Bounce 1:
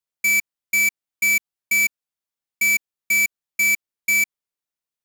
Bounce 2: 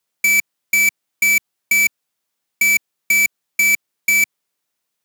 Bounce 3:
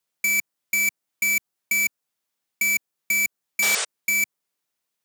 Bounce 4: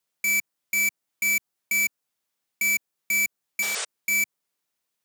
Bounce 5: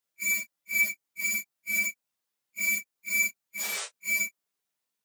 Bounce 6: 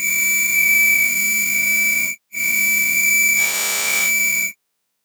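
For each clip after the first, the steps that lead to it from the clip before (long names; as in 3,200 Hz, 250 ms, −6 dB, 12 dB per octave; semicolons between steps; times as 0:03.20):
high-pass filter 120 Hz; in parallel at +3 dB: compressor whose output falls as the input rises −23 dBFS, ratio −0.5
dynamic equaliser 3,000 Hz, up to −4 dB, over −30 dBFS, Q 0.89; sound drawn into the spectrogram noise, 0:03.62–0:03.85, 380–9,500 Hz −21 dBFS; level −4.5 dB
brickwall limiter −19.5 dBFS, peak gain reduction 8.5 dB
random phases in long frames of 100 ms; level −4 dB
every bin's largest magnitude spread in time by 480 ms; level +6 dB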